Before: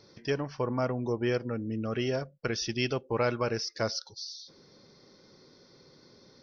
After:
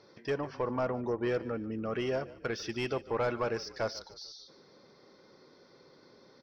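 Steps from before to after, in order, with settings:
mid-hump overdrive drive 15 dB, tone 1,200 Hz, clips at −15.5 dBFS
echo with shifted repeats 147 ms, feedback 45%, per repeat −35 Hz, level −18 dB
level −4 dB

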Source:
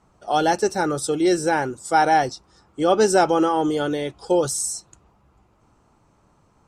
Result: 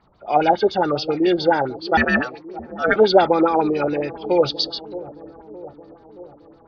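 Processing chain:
hearing-aid frequency compression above 1,400 Hz 1.5 to 1
0:01.97–0:02.96: ring modulation 1,000 Hz
delay with a low-pass on its return 620 ms, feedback 61%, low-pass 670 Hz, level −15 dB
auto-filter low-pass sine 7.2 Hz 560–6,500 Hz

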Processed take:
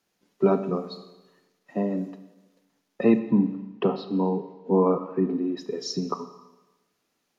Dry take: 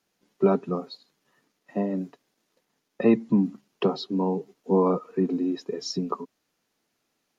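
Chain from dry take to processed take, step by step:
0:03.19–0:05.57: low-pass filter 2,700 Hz 12 dB per octave
four-comb reverb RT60 1.1 s, combs from 28 ms, DRR 10 dB

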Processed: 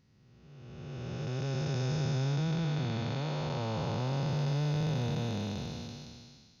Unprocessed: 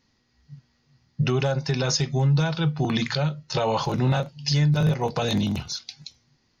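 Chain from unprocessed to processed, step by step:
spectrum smeared in time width 1,000 ms
level −5 dB

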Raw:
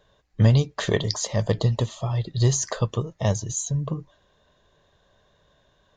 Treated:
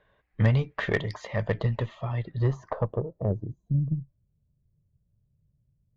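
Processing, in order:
low-pass filter sweep 2,100 Hz → 130 Hz, 0:02.20–0:04.00
harmonic generator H 6 −24 dB, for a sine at −5 dBFS
level −5 dB

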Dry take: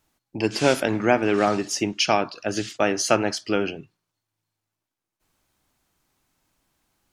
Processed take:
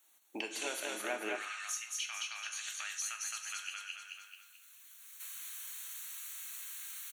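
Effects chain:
camcorder AGC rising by 19 dB per second
Butterworth band-reject 5,000 Hz, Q 3.9
first difference
repeating echo 217 ms, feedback 35%, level −3.5 dB
downward compressor 2.5 to 1, threshold −51 dBFS, peak gain reduction 19 dB
high-pass filter 230 Hz 24 dB per octave, from 0:01.36 1,300 Hz
high-shelf EQ 2,600 Hz −9.5 dB
reverb whose tail is shaped and stops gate 170 ms falling, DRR 6.5 dB
level +12.5 dB

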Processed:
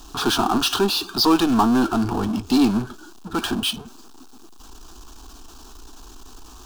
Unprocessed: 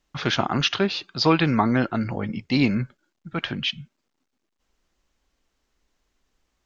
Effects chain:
power curve on the samples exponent 0.5
phaser with its sweep stopped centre 550 Hz, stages 6

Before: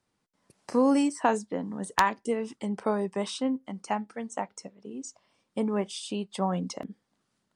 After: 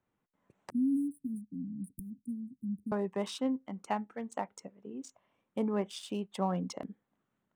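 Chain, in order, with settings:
adaptive Wiener filter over 9 samples
0:00.70–0:02.92: Chebyshev band-stop filter 270–9,700 Hz, order 5
level −3.5 dB

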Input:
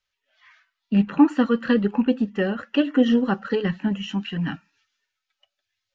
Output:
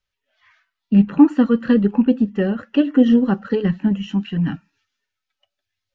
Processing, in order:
low-shelf EQ 470 Hz +10.5 dB
level −3 dB

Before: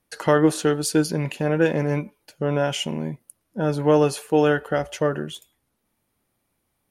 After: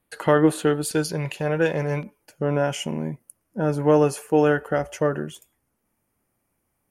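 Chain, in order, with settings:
parametric band 5,600 Hz −12.5 dB 0.56 octaves, from 0:00.91 250 Hz, from 0:02.03 3,800 Hz

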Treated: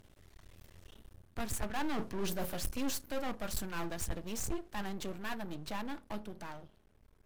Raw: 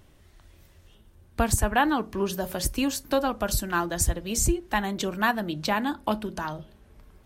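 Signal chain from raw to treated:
source passing by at 0:01.91, 5 m/s, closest 3 metres
reversed playback
downward compressor 5 to 1, threshold −36 dBFS, peak gain reduction 17 dB
reversed playback
tube saturation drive 34 dB, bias 0.7
half-wave rectification
level +13 dB

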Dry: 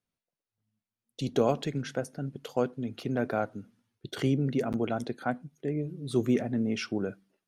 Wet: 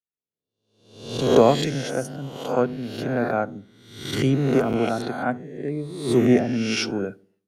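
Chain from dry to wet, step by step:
peak hold with a rise ahead of every peak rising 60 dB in 1.10 s
feedback echo with a low-pass in the loop 69 ms, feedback 57%, low-pass 820 Hz, level −19.5 dB
multiband upward and downward expander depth 70%
level +4.5 dB

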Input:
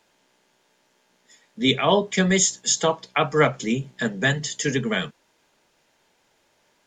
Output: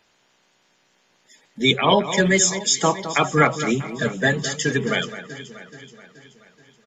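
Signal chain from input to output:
spectral magnitudes quantised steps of 30 dB
delay that swaps between a low-pass and a high-pass 214 ms, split 2,300 Hz, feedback 71%, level −11.5 dB
downsampling to 32,000 Hz
level +2.5 dB

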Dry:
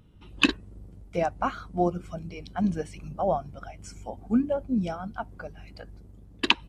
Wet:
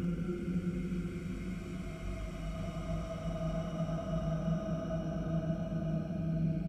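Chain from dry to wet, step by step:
octave-band graphic EQ 250/500/1,000/2,000/8,000 Hz +5/−3/−5/+5/−6 dB
extreme stretch with random phases 28×, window 0.25 s, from 0:01.99
double-tracking delay 43 ms −12.5 dB

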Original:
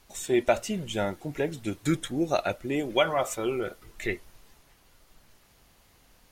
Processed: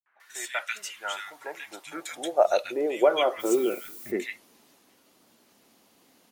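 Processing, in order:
three-band delay without the direct sound lows, mids, highs 60/200 ms, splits 160/1,700 Hz
high-pass filter sweep 1,600 Hz → 240 Hz, 0:00.65–0:03.98
0:03.39–0:04.10: background noise violet −44 dBFS

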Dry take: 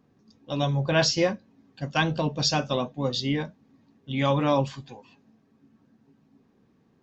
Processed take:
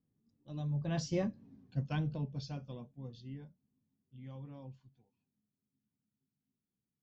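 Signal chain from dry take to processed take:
source passing by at 0:01.47, 15 m/s, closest 2.2 metres
drawn EQ curve 140 Hz 0 dB, 550 Hz −12 dB, 1,300 Hz −16 dB
level +6 dB

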